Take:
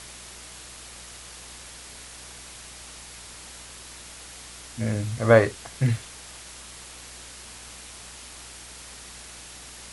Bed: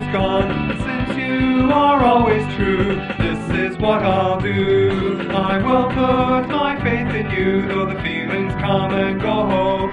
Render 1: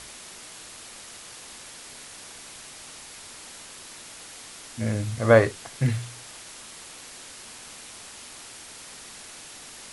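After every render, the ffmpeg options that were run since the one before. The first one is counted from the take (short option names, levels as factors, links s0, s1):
-af "bandreject=f=60:t=h:w=4,bandreject=f=120:t=h:w=4,bandreject=f=180:t=h:w=4"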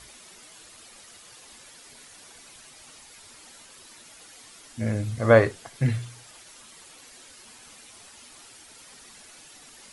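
-af "afftdn=nr=9:nf=-44"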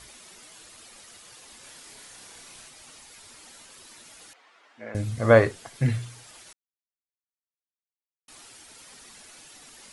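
-filter_complex "[0:a]asettb=1/sr,asplit=3[s0][s1][s2];[s0]atrim=end=1.604[s3];[s1]atrim=start=1.6:end=2.68,asetpts=PTS-STARTPTS,afade=t=in:d=0.004:c=qsin,afade=t=out:st=1.076:d=0.004:c=qsin,asplit=2[s4][s5];[s5]adelay=31,volume=0.708[s6];[s4][s6]amix=inputs=2:normalize=0,atrim=end_sample=47628[s7];[s2]atrim=start=2.676[s8];[s3][s7]acrossfade=d=0.004:c1=hsin:c2=qsin[s9];[s9][s8]acrossfade=d=0.004:c1=qsin:c2=hsin,asettb=1/sr,asplit=3[s10][s11][s12];[s10]atrim=end=4.334[s13];[s11]atrim=start=4.33:end=4.95,asetpts=PTS-STARTPTS,afade=t=in:d=0.004:c=qsin,afade=t=out:st=0.616:d=0.004:c=qsin,highpass=610,lowpass=2000[s14];[s12]atrim=start=4.946[s15];[s13][s14]acrossfade=d=0.004:c1=hsin:c2=qsin[s16];[s16][s15]acrossfade=d=0.004:c1=qsin:c2=hsin,asplit=3[s17][s18][s19];[s17]atrim=end=6.53,asetpts=PTS-STARTPTS,afade=t=out:st=6.526:d=0.004:c=hsin[s20];[s18]atrim=start=6.53:end=8.28,asetpts=PTS-STARTPTS,volume=0[s21];[s19]atrim=start=8.28,asetpts=PTS-STARTPTS,afade=t=in:d=0.004:c=hsin[s22];[s20][s21][s22]concat=n=3:v=0:a=1"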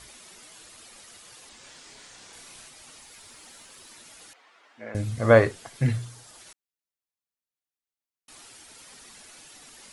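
-filter_complex "[0:a]asettb=1/sr,asplit=3[s0][s1][s2];[s0]atrim=end=1.494[s3];[s1]atrim=start=1.49:end=2.33,asetpts=PTS-STARTPTS,afade=t=in:d=0.004:c=qsin,afade=t=out:st=0.836:d=0.004:c=qsin,lowpass=f=8200:w=0.5412,lowpass=f=8200:w=1.3066[s4];[s2]atrim=start=2.326[s5];[s3][s4]acrossfade=d=0.004:c1=hsin:c2=qsin[s6];[s6][s5]acrossfade=d=0.004:c1=qsin:c2=hsin,asettb=1/sr,asplit=3[s7][s8][s9];[s7]atrim=end=3.014[s10];[s8]atrim=start=3.01:end=3.9,asetpts=PTS-STARTPTS,afade=t=in:d=0.004:c=qsin,afade=t=out:st=0.886:d=0.004:c=qsin,acrusher=bits=7:mode=log:mix=0:aa=0.000001[s11];[s9]atrim=start=3.896[s12];[s10][s11]acrossfade=d=0.004:c1=hsin:c2=qsin[s13];[s13][s12]acrossfade=d=0.004:c1=qsin:c2=hsin,asettb=1/sr,asplit=3[s14][s15][s16];[s14]atrim=end=5.924[s17];[s15]atrim=start=5.92:end=6.4,asetpts=PTS-STARTPTS,afade=t=in:d=0.004:c=qsin,afade=t=out:st=0.476:d=0.004:c=qsin,equalizer=f=2400:w=1.5:g=-6[s18];[s16]atrim=start=6.396[s19];[s17][s18]acrossfade=d=0.004:c1=hsin:c2=qsin[s20];[s20][s19]acrossfade=d=0.004:c1=qsin:c2=hsin"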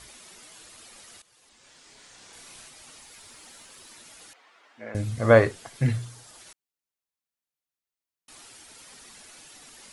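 -filter_complex "[0:a]asplit=2[s0][s1];[s0]atrim=end=1.22,asetpts=PTS-STARTPTS,afade=t=out:st=1.216:d=0.004:c=hsin:silence=0.158489[s2];[s1]atrim=start=1.22,asetpts=PTS-STARTPTS,afade=t=in:d=1.3:silence=0.158489[s3];[s2][s3]concat=n=2:v=0:a=1"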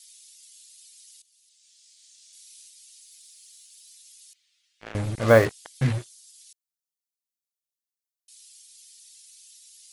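-filter_complex "[0:a]acrossover=split=3400[s0][s1];[s0]acrusher=bits=4:mix=0:aa=0.5[s2];[s1]aeval=exprs='0.0282*(cos(1*acos(clip(val(0)/0.0282,-1,1)))-cos(1*PI/2))+0.001*(cos(2*acos(clip(val(0)/0.0282,-1,1)))-cos(2*PI/2))':c=same[s3];[s2][s3]amix=inputs=2:normalize=0"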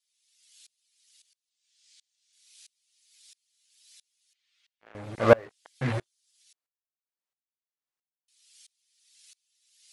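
-filter_complex "[0:a]asplit=2[s0][s1];[s1]highpass=f=720:p=1,volume=7.94,asoftclip=type=tanh:threshold=0.708[s2];[s0][s2]amix=inputs=2:normalize=0,lowpass=f=1200:p=1,volume=0.501,aeval=exprs='val(0)*pow(10,-31*if(lt(mod(-1.5*n/s,1),2*abs(-1.5)/1000),1-mod(-1.5*n/s,1)/(2*abs(-1.5)/1000),(mod(-1.5*n/s,1)-2*abs(-1.5)/1000)/(1-2*abs(-1.5)/1000))/20)':c=same"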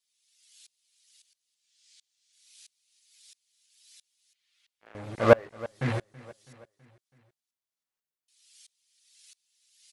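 -af "aecho=1:1:327|654|981|1308:0.0944|0.051|0.0275|0.0149"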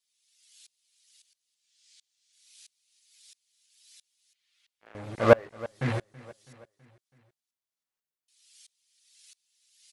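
-af anull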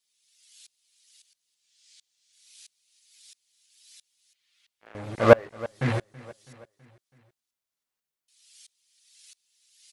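-af "volume=1.41"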